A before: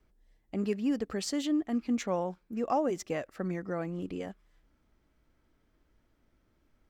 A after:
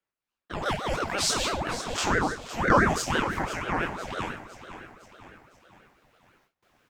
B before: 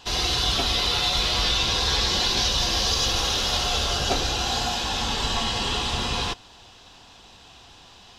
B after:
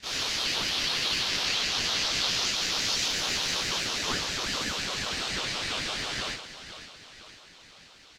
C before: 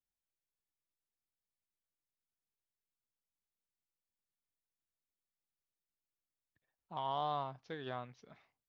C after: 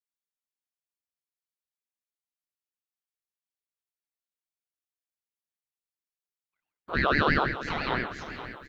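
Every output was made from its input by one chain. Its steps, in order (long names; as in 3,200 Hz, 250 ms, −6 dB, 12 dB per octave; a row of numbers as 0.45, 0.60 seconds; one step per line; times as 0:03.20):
every bin's largest magnitude spread in time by 60 ms
on a send: repeating echo 509 ms, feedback 50%, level −12.5 dB
on the sum: four-comb reverb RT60 0.47 s, combs from 28 ms, DRR 7.5 dB
noise gate with hold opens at −54 dBFS
high-pass filter 520 Hz 12 dB per octave
ring modulator whose carrier an LFO sweeps 620 Hz, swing 65%, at 6 Hz
loudness normalisation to −27 LKFS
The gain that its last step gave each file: +9.5, −6.0, +14.5 decibels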